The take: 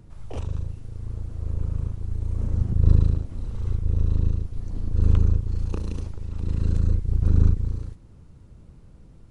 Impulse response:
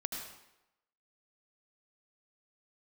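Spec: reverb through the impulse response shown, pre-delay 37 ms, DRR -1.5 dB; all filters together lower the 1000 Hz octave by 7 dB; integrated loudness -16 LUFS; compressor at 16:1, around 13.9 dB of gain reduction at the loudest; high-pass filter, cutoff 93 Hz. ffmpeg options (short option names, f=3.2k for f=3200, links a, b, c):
-filter_complex "[0:a]highpass=93,equalizer=f=1k:t=o:g=-9,acompressor=threshold=-30dB:ratio=16,asplit=2[a][b];[1:a]atrim=start_sample=2205,adelay=37[c];[b][c]afir=irnorm=-1:irlink=0,volume=0dB[d];[a][d]amix=inputs=2:normalize=0,volume=16dB"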